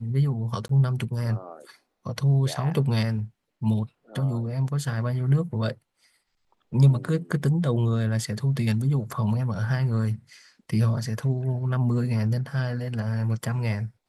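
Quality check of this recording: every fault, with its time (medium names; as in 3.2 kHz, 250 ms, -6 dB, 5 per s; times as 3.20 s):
0.68–0.69 s: dropout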